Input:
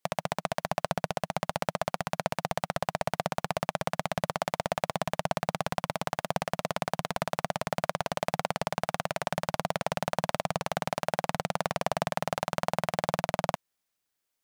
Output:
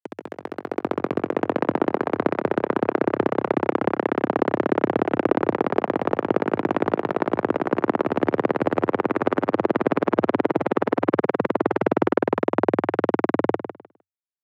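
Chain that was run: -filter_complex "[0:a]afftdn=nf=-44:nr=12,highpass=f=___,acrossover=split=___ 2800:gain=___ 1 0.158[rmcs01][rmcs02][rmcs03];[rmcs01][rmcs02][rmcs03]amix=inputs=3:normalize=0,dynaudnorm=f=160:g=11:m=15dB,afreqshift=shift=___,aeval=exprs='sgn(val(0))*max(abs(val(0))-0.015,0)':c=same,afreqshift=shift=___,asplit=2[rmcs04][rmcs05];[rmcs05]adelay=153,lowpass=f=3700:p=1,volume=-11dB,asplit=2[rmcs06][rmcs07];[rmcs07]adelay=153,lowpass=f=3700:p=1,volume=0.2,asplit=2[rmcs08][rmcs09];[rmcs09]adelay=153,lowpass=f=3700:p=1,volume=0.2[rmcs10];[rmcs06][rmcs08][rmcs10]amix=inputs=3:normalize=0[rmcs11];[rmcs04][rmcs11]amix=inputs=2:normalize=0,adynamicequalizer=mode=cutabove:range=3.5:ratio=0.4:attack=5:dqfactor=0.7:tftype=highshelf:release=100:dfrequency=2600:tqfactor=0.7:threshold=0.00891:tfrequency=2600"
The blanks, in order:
58, 350, 0.141, -410, 89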